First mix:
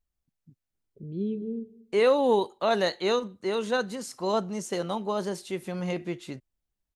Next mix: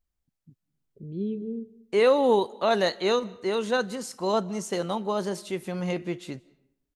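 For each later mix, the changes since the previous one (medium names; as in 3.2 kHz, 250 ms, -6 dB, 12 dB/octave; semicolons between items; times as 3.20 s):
second voice: send on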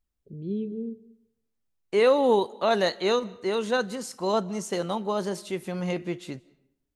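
first voice: entry -0.70 s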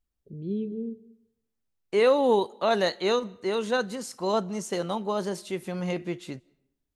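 second voice: send -6.0 dB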